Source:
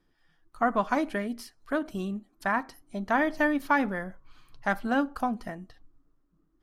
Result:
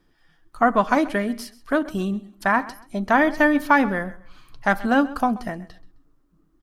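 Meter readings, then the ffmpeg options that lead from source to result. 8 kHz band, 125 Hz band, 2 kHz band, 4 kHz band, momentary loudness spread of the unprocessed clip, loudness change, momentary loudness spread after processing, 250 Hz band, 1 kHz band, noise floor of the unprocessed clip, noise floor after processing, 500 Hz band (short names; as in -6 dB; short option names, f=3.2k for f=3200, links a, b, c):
+7.5 dB, +7.5 dB, +7.5 dB, +7.5 dB, 13 LU, +7.5 dB, 13 LU, +7.5 dB, +7.5 dB, -70 dBFS, -63 dBFS, +7.5 dB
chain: -af "aecho=1:1:131|262:0.112|0.0292,volume=7.5dB"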